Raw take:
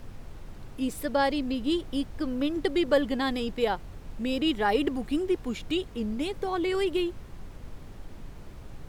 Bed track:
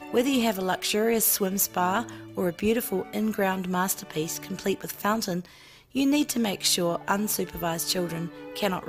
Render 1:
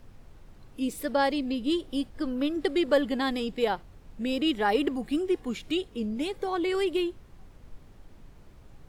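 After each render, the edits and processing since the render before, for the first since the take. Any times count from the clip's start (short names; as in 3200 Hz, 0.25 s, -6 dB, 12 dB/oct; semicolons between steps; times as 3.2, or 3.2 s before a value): noise print and reduce 8 dB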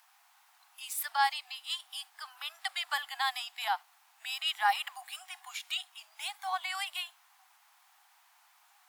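steep high-pass 730 Hz 96 dB/oct; high shelf 9700 Hz +11.5 dB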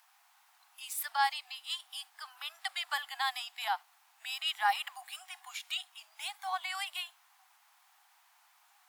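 gain -1.5 dB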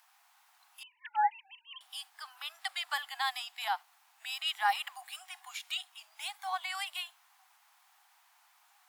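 0.83–1.81 sine-wave speech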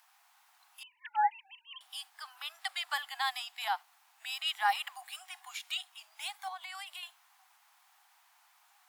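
6.48–7.03 compressor 2.5:1, threshold -43 dBFS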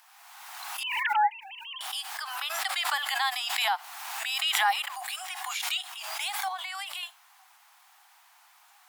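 in parallel at +2 dB: limiter -29 dBFS, peak gain reduction 11 dB; on the sum: backwards sustainer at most 32 dB/s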